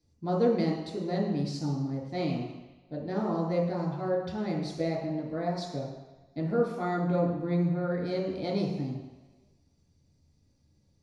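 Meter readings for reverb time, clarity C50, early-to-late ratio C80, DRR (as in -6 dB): 1.1 s, 2.5 dB, 5.5 dB, -5.5 dB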